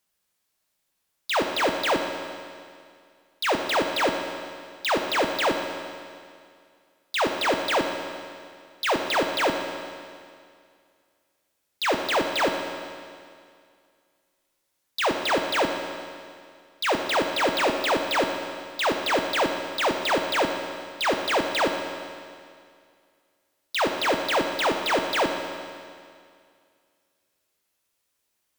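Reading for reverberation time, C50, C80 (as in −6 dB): 2.2 s, 5.0 dB, 6.0 dB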